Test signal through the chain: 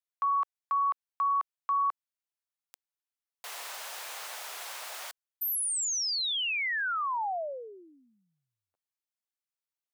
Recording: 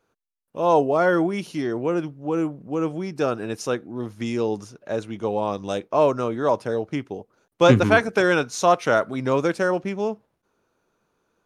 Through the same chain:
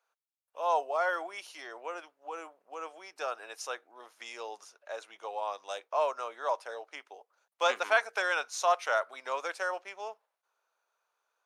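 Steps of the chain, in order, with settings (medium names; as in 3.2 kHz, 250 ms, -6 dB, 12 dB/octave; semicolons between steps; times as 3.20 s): high-pass 650 Hz 24 dB/octave; trim -6.5 dB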